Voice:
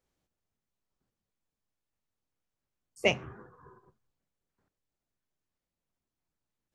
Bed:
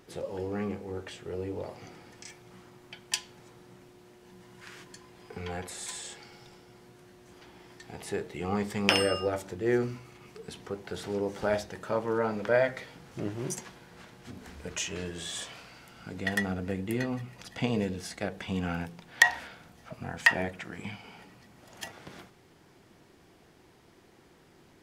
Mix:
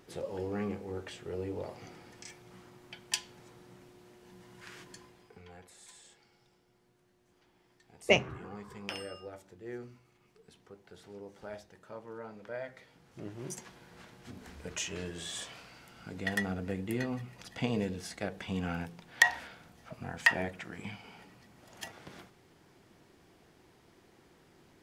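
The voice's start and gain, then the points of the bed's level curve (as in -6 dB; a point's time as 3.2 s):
5.05 s, +1.5 dB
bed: 5.02 s -2 dB
5.44 s -16 dB
12.57 s -16 dB
13.87 s -3 dB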